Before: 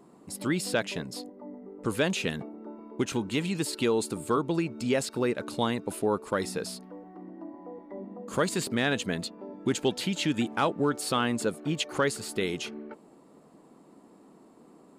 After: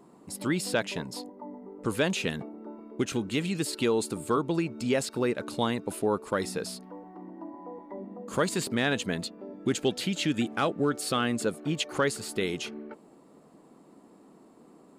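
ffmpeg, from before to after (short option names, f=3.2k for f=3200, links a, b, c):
-af "asetnsamples=n=441:p=0,asendcmd='0.97 equalizer g 13;1.78 equalizer g 1;2.8 equalizer g -9.5;3.68 equalizer g -0.5;6.86 equalizer g 11;7.96 equalizer g 0.5;9.26 equalizer g -10;11.44 equalizer g -1',equalizer=f=930:t=o:w=0.22:g=2.5"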